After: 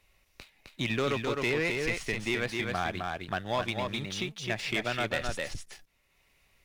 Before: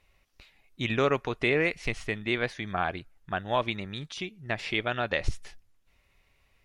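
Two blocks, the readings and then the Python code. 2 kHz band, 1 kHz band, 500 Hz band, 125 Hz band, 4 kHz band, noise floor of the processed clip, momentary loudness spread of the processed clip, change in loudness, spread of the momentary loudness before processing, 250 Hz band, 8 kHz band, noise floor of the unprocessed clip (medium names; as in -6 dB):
-1.0 dB, -2.0 dB, -2.5 dB, -1.0 dB, +1.0 dB, -70 dBFS, 7 LU, -1.5 dB, 11 LU, -1.0 dB, +6.5 dB, -69 dBFS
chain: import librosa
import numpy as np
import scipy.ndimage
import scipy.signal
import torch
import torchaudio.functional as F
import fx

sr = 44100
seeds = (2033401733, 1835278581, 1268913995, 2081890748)

y = fx.high_shelf(x, sr, hz=4600.0, db=7.5)
y = fx.leveller(y, sr, passes=2)
y = y + 10.0 ** (-4.5 / 20.0) * np.pad(y, (int(260 * sr / 1000.0), 0))[:len(y)]
y = fx.band_squash(y, sr, depth_pct=40)
y = y * 10.0 ** (-9.0 / 20.0)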